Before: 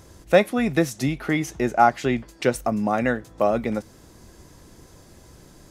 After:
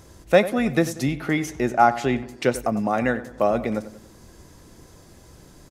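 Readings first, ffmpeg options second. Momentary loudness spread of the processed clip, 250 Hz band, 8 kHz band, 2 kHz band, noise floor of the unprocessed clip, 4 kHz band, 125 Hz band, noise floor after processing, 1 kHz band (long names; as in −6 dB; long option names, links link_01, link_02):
7 LU, 0.0 dB, 0.0 dB, 0.0 dB, −50 dBFS, 0.0 dB, 0.0 dB, −50 dBFS, 0.0 dB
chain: -filter_complex "[0:a]asplit=2[link_01][link_02];[link_02]adelay=93,lowpass=frequency=2400:poles=1,volume=-14dB,asplit=2[link_03][link_04];[link_04]adelay=93,lowpass=frequency=2400:poles=1,volume=0.48,asplit=2[link_05][link_06];[link_06]adelay=93,lowpass=frequency=2400:poles=1,volume=0.48,asplit=2[link_07][link_08];[link_08]adelay=93,lowpass=frequency=2400:poles=1,volume=0.48,asplit=2[link_09][link_10];[link_10]adelay=93,lowpass=frequency=2400:poles=1,volume=0.48[link_11];[link_01][link_03][link_05][link_07][link_09][link_11]amix=inputs=6:normalize=0"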